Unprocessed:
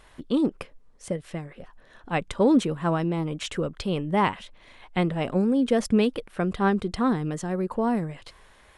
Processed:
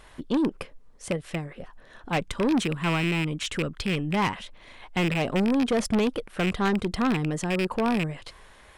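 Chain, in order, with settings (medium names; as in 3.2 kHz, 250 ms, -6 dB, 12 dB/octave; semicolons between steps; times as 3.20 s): rattle on loud lows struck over -29 dBFS, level -18 dBFS; 2.28–4.31 s: peaking EQ 590 Hz -6 dB 1.2 oct; saturation -22 dBFS, distortion -11 dB; trim +3 dB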